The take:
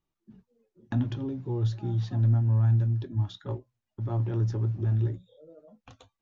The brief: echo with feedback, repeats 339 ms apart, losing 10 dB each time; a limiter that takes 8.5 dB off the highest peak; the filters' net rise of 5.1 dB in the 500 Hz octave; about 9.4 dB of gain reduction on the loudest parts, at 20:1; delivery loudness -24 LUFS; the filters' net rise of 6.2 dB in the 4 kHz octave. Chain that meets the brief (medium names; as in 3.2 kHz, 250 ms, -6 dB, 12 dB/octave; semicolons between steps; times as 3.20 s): peaking EQ 500 Hz +7.5 dB; peaking EQ 4 kHz +7 dB; compression 20:1, threshold -28 dBFS; peak limiter -29 dBFS; feedback delay 339 ms, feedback 32%, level -10 dB; trim +13 dB